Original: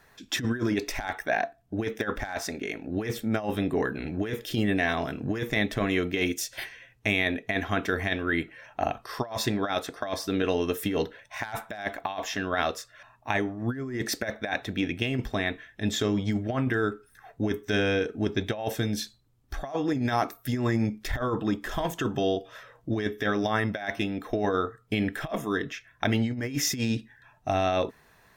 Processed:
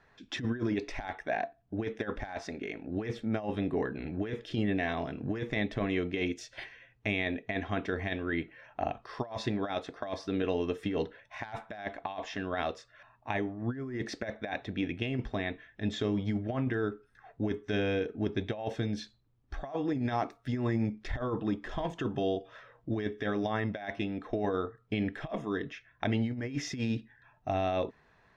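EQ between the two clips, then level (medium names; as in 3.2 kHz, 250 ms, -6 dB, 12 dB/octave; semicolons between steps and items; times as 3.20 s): treble shelf 7 kHz -10.5 dB; dynamic bell 1.4 kHz, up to -5 dB, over -43 dBFS, Q 2.2; distance through air 95 m; -4.0 dB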